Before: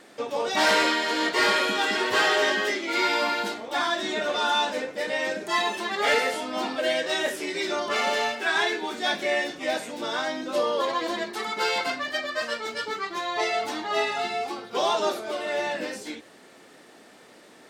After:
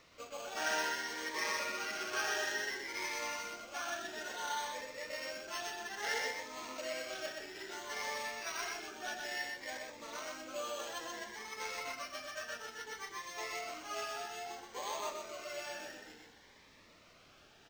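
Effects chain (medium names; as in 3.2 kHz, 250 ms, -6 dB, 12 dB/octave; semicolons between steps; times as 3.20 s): median filter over 15 samples; pre-emphasis filter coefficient 0.97; careless resampling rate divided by 6×, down filtered, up zero stuff; hum notches 50/100/150/200/250/300/350/400 Hz; thinning echo 339 ms, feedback 58%, high-pass 850 Hz, level -22 dB; word length cut 10-bit, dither triangular; distance through air 220 m; delay 124 ms -4 dB; Shepard-style phaser rising 0.59 Hz; trim +6.5 dB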